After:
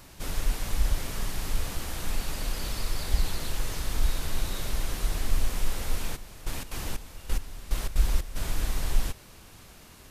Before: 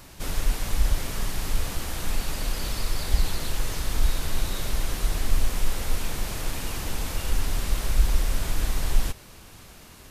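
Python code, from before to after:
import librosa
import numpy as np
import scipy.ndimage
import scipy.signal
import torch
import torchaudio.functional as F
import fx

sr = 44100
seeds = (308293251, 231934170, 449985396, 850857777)

y = fx.step_gate(x, sr, bpm=181, pattern='...xx.xxx....x.', floor_db=-12.0, edge_ms=4.5, at=(6.15, 8.35), fade=0.02)
y = y * 10.0 ** (-3.0 / 20.0)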